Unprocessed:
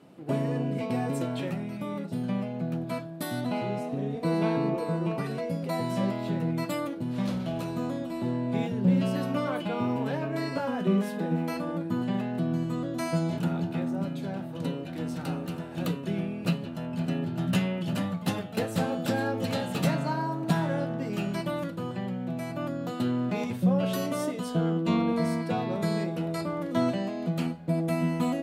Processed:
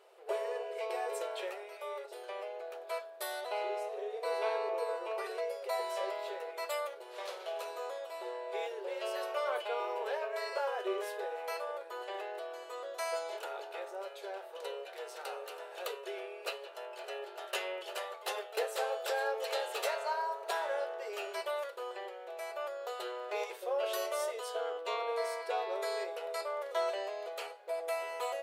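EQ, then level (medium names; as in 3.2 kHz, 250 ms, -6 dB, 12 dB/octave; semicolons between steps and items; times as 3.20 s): brick-wall FIR high-pass 370 Hz; -2.5 dB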